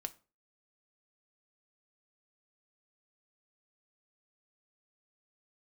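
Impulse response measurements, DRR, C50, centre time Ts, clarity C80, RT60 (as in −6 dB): 8.0 dB, 19.5 dB, 3 ms, 25.0 dB, 0.35 s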